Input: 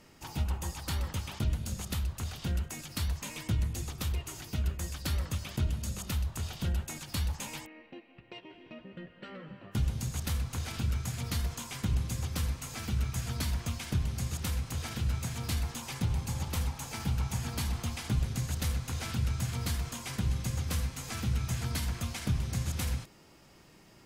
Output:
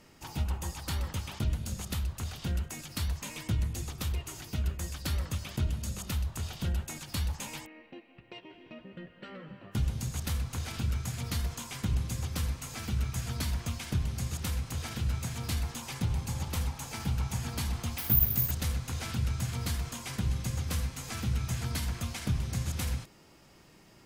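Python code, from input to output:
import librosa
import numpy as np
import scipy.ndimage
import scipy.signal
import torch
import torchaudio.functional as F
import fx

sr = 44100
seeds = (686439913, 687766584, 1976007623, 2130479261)

y = fx.resample_bad(x, sr, factor=3, down='filtered', up='zero_stuff', at=(17.98, 18.51))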